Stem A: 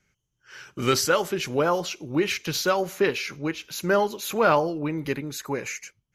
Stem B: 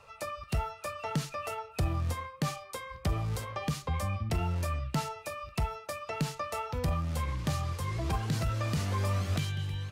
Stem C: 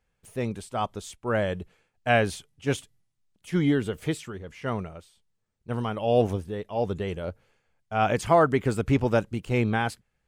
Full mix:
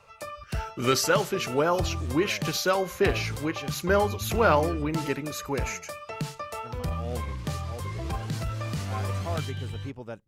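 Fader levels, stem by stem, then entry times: −1.5, −0.5, −16.0 decibels; 0.00, 0.00, 0.95 seconds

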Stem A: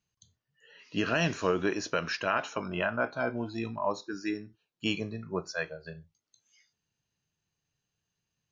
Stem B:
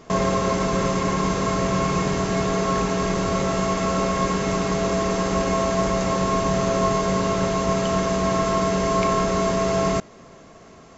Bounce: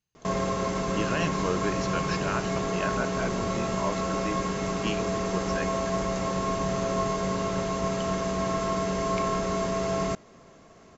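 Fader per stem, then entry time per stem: −2.5, −6.5 decibels; 0.00, 0.15 seconds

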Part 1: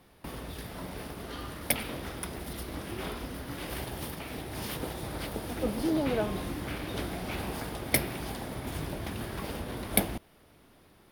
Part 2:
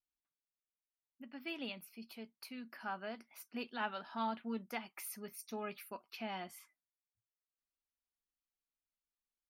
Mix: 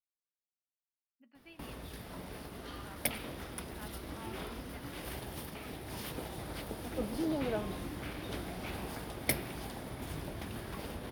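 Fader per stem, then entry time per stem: −5.5, −12.5 decibels; 1.35, 0.00 seconds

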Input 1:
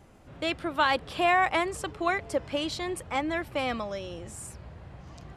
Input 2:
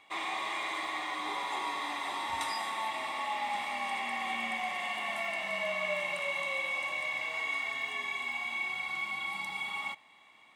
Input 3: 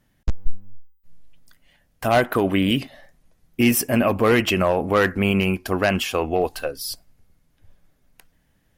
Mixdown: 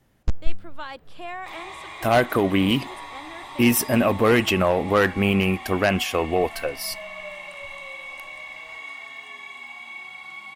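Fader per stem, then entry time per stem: −12.0, −3.5, −0.5 decibels; 0.00, 1.35, 0.00 seconds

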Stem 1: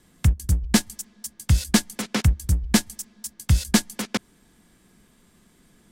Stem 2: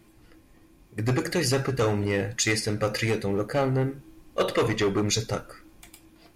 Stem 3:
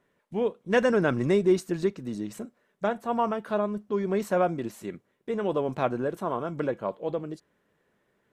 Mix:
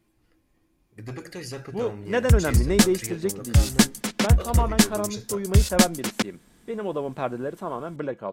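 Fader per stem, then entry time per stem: +1.0, −11.5, −1.5 decibels; 2.05, 0.00, 1.40 seconds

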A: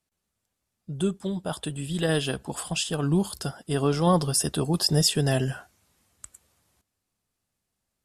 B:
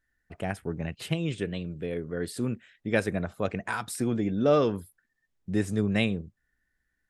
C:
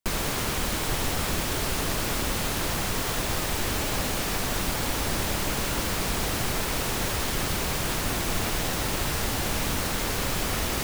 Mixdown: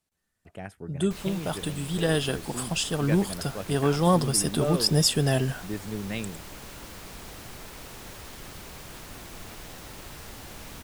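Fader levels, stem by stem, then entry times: 0.0, −7.5, −15.0 decibels; 0.00, 0.15, 1.05 seconds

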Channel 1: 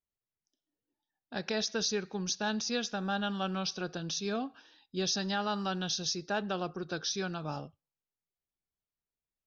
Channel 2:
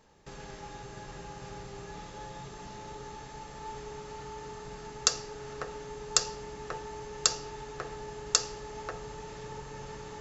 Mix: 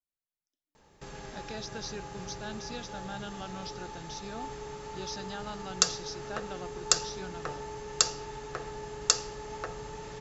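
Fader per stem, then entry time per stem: −8.5, +1.0 decibels; 0.00, 0.75 seconds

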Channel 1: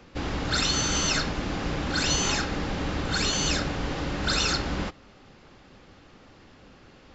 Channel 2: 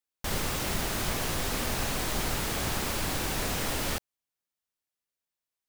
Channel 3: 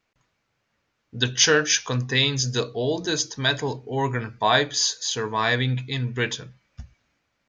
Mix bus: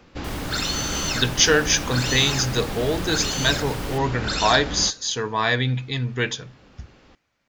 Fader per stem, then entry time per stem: −0.5, −6.5, +1.0 decibels; 0.00, 0.00, 0.00 seconds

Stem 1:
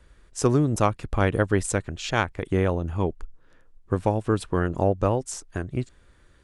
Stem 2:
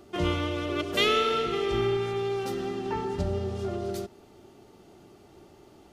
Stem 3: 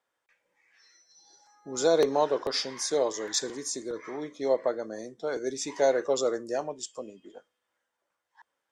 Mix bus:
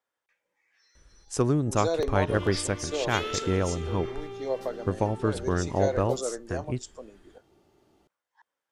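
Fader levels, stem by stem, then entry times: −3.5, −10.5, −5.0 decibels; 0.95, 2.15, 0.00 seconds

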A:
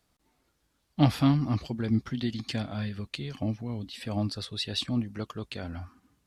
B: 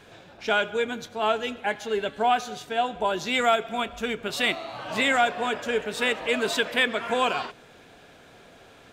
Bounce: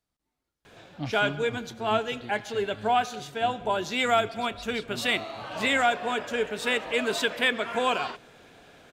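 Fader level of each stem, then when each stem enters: −12.5, −1.5 decibels; 0.00, 0.65 seconds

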